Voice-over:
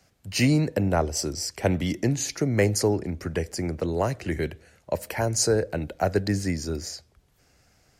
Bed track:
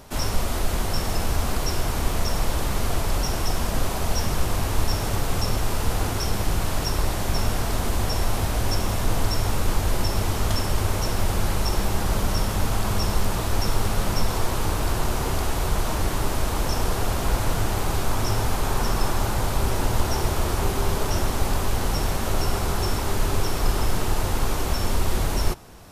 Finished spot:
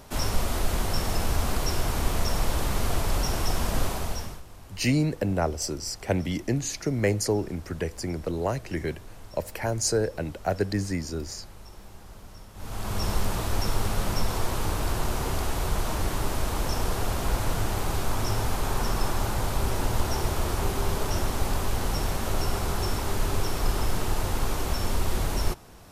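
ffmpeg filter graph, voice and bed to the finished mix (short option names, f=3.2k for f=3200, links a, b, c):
-filter_complex "[0:a]adelay=4450,volume=-2.5dB[a];[1:a]volume=17.5dB,afade=t=out:st=3.82:d=0.6:silence=0.0891251,afade=t=in:st=12.54:d=0.55:silence=0.105925[b];[a][b]amix=inputs=2:normalize=0"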